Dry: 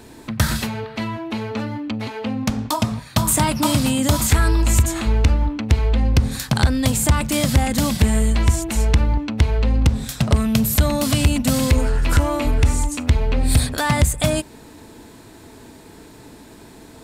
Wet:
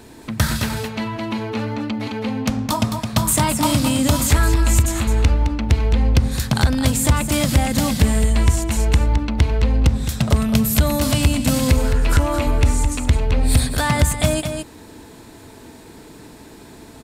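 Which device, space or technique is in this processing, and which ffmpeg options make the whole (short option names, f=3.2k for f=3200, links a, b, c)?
ducked delay: -filter_complex "[0:a]asplit=3[a][b][c];[b]adelay=214,volume=-4dB[d];[c]apad=whole_len=760580[e];[d][e]sidechaincompress=threshold=-17dB:ratio=8:attack=34:release=1060[f];[a][f]amix=inputs=2:normalize=0"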